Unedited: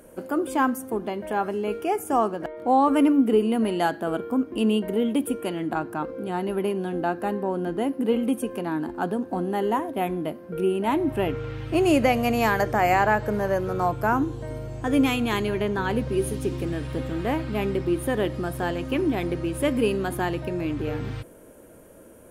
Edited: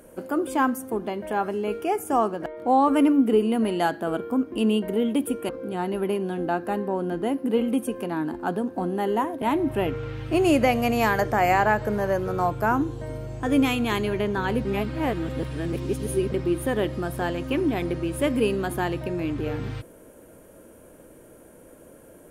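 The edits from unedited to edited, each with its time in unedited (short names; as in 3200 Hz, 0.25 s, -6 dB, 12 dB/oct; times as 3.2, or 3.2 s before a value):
5.49–6.04 cut
9.97–10.83 cut
16.06–17.73 reverse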